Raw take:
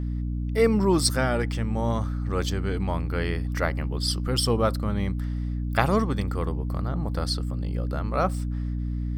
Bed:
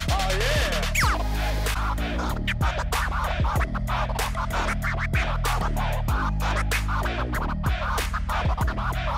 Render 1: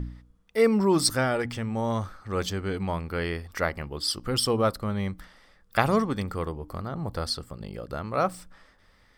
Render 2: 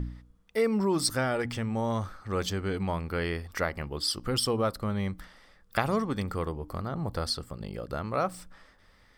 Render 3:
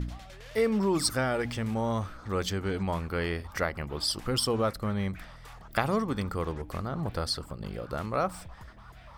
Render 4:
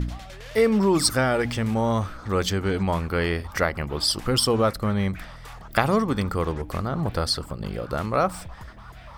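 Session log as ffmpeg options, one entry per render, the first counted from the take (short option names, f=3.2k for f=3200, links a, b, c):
-af "bandreject=f=60:t=h:w=4,bandreject=f=120:t=h:w=4,bandreject=f=180:t=h:w=4,bandreject=f=240:t=h:w=4,bandreject=f=300:t=h:w=4"
-af "acompressor=threshold=-26dB:ratio=2"
-filter_complex "[1:a]volume=-24dB[a];[0:a][a]amix=inputs=2:normalize=0"
-af "volume=6.5dB"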